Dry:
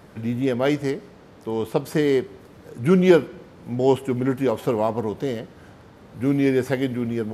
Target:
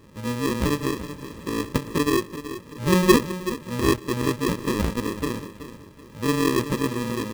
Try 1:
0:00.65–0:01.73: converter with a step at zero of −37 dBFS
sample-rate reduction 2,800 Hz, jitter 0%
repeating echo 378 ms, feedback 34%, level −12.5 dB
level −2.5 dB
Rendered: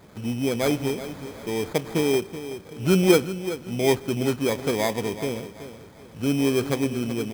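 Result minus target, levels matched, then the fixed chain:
sample-rate reduction: distortion −20 dB
0:00.65–0:01.73: converter with a step at zero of −37 dBFS
sample-rate reduction 730 Hz, jitter 0%
repeating echo 378 ms, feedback 34%, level −12.5 dB
level −2.5 dB

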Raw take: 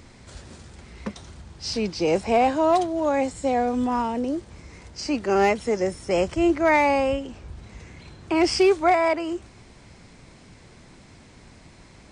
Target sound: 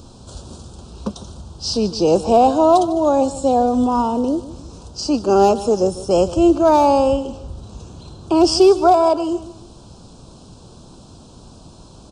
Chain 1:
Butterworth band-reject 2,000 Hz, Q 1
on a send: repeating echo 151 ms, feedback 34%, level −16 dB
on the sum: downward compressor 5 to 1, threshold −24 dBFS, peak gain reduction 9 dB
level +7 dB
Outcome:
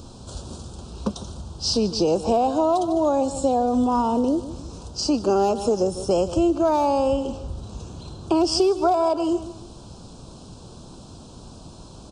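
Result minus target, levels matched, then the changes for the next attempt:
downward compressor: peak gain reduction +9 dB
remove: downward compressor 5 to 1, threshold −24 dBFS, peak gain reduction 9 dB

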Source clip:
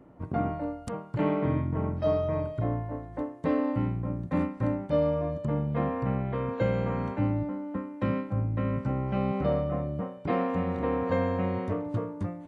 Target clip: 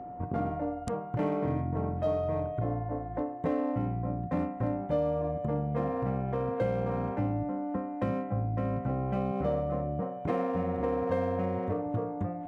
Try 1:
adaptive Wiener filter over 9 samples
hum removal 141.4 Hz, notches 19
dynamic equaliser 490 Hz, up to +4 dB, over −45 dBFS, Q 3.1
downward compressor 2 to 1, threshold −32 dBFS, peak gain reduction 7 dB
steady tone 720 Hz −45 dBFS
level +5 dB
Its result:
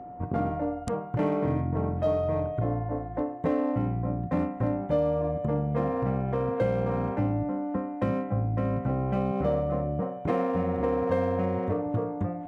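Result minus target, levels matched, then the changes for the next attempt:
downward compressor: peak gain reduction −3.5 dB
change: downward compressor 2 to 1, threshold −39 dBFS, peak gain reduction 10.5 dB

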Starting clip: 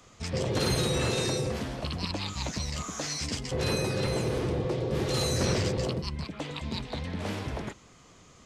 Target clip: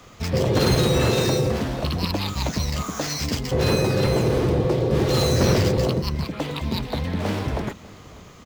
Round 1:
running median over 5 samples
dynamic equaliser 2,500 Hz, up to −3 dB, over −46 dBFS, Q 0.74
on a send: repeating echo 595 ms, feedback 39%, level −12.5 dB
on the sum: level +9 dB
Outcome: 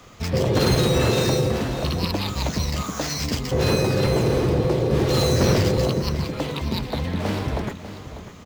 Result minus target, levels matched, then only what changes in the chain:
echo-to-direct +9 dB
change: repeating echo 595 ms, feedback 39%, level −21.5 dB

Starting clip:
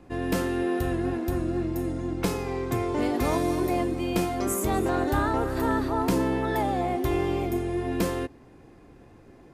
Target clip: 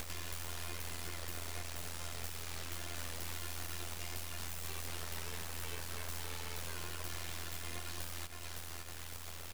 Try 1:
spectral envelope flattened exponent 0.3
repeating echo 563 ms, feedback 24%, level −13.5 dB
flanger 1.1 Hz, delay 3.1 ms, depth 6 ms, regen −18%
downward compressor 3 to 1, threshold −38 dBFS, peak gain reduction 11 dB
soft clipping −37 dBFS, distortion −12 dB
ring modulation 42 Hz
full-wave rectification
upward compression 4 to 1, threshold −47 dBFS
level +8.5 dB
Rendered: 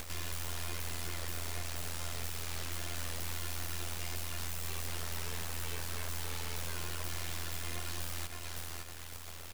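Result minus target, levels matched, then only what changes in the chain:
downward compressor: peak gain reduction −7 dB
change: downward compressor 3 to 1, threshold −48.5 dBFS, peak gain reduction 18 dB

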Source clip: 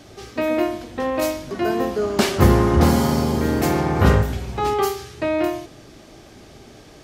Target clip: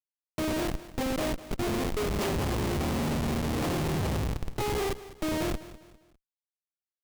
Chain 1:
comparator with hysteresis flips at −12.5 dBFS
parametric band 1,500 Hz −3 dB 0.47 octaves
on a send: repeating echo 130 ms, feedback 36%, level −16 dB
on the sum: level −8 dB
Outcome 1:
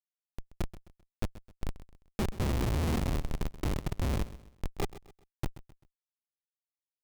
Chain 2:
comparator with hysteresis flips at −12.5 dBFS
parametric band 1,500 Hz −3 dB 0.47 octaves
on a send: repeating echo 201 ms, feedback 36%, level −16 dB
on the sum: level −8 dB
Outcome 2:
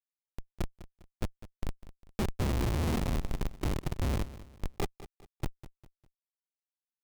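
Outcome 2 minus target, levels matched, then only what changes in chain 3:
comparator with hysteresis: distortion +7 dB
change: comparator with hysteresis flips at −21 dBFS

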